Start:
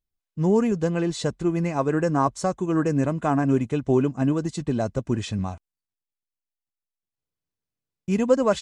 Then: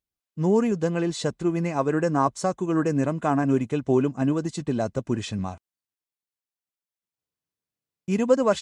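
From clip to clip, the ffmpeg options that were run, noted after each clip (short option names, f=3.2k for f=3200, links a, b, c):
-af "highpass=f=120:p=1"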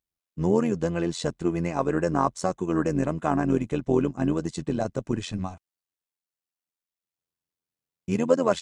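-af "tremolo=f=86:d=0.71,volume=1.5dB"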